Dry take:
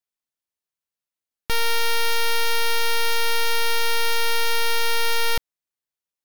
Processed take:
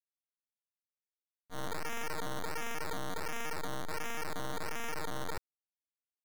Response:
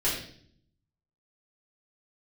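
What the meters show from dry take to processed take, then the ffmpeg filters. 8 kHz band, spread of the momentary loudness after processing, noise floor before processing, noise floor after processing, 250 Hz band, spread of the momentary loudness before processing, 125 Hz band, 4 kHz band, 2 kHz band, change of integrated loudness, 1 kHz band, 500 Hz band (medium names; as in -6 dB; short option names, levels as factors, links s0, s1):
-16.5 dB, 3 LU, under -85 dBFS, under -85 dBFS, +5.0 dB, 3 LU, -6.0 dB, -23.0 dB, -17.0 dB, -17.5 dB, -14.0 dB, -13.5 dB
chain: -af "equalizer=f=2200:w=1.4:g=2.5,agate=range=0.00251:threshold=0.178:ratio=16:detection=peak,acrusher=samples=14:mix=1:aa=0.000001:lfo=1:lforange=8.4:lforate=1.4,volume=5.62"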